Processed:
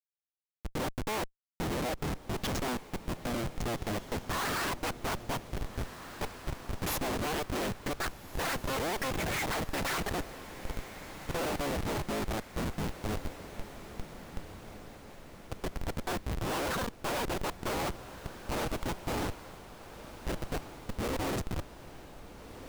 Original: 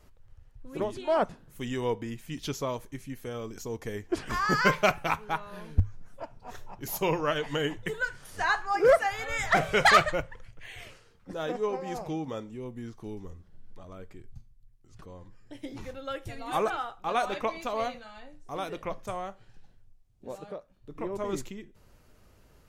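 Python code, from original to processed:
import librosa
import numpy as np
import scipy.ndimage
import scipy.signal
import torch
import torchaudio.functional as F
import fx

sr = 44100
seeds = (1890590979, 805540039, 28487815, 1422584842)

p1 = fx.cycle_switch(x, sr, every=3, mode='inverted')
p2 = fx.low_shelf(p1, sr, hz=73.0, db=-6.5)
p3 = fx.dereverb_blind(p2, sr, rt60_s=0.55)
p4 = fx.schmitt(p3, sr, flips_db=-36.5)
y = p4 + fx.echo_diffused(p4, sr, ms=1589, feedback_pct=57, wet_db=-13, dry=0)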